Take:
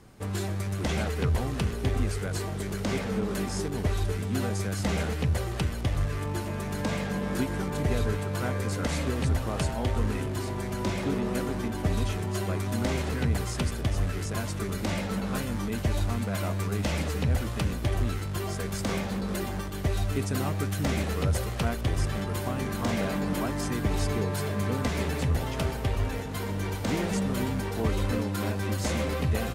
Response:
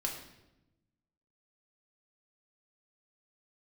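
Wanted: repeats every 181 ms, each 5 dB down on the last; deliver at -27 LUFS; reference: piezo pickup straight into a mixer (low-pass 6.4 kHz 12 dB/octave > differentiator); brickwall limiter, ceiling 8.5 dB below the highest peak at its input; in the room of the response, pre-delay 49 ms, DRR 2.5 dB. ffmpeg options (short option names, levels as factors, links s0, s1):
-filter_complex "[0:a]alimiter=limit=0.0631:level=0:latency=1,aecho=1:1:181|362|543|724|905|1086|1267:0.562|0.315|0.176|0.0988|0.0553|0.031|0.0173,asplit=2[s0][s1];[1:a]atrim=start_sample=2205,adelay=49[s2];[s1][s2]afir=irnorm=-1:irlink=0,volume=0.562[s3];[s0][s3]amix=inputs=2:normalize=0,lowpass=6400,aderivative,volume=8.91"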